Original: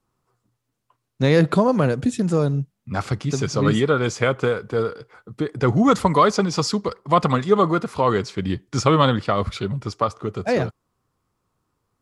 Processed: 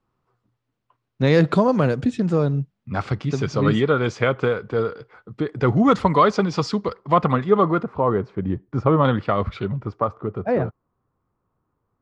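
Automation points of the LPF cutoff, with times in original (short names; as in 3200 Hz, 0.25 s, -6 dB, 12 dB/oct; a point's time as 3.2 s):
3500 Hz
from 1.27 s 6100 Hz
from 2.04 s 3800 Hz
from 7.13 s 2400 Hz
from 7.83 s 1100 Hz
from 9.05 s 2500 Hz
from 9.82 s 1400 Hz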